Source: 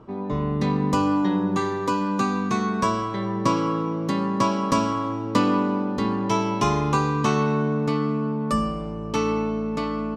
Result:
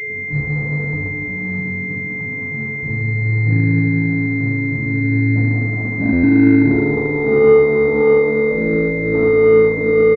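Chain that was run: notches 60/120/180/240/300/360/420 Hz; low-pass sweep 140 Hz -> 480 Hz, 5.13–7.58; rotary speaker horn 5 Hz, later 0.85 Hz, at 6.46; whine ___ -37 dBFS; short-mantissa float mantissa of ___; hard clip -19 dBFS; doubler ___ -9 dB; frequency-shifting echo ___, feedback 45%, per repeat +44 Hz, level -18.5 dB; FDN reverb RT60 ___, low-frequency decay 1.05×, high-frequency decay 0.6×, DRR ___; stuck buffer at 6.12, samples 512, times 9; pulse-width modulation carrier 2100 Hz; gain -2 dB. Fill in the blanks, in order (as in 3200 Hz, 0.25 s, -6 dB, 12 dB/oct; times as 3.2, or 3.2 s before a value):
430 Hz, 2-bit, 43 ms, 0.49 s, 1.8 s, -7 dB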